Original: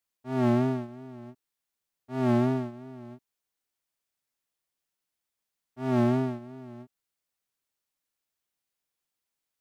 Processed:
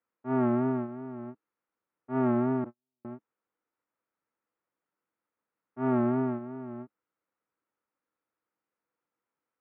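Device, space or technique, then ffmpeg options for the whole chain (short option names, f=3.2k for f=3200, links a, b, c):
bass amplifier: -filter_complex "[0:a]asettb=1/sr,asplit=3[a][b][c];[a]atrim=end=2.644[d];[b]atrim=start=2.64:end=3.05,asetpts=PTS-STARTPTS,afade=t=in:d=0.004:c=qsin,afade=t=out:st=0.406:d=0.004:c=qsin,agate=range=-55dB:threshold=-34dB:ratio=16:detection=peak[e];[c]atrim=start=3.046[f];[d][e]acrossfade=d=0.004:c1=hsin:c2=qsin[g];[g][f]acrossfade=d=0.004:c1=qsin:c2=hsin,acompressor=threshold=-26dB:ratio=6,highpass=87,equalizer=f=210:t=q:w=4:g=5,equalizer=f=310:t=q:w=4:g=9,equalizer=f=490:t=q:w=4:g=9,equalizer=f=930:t=q:w=4:g=5,equalizer=f=1.3k:t=q:w=4:g=8,lowpass=f=2.2k:w=0.5412,lowpass=f=2.2k:w=1.3066"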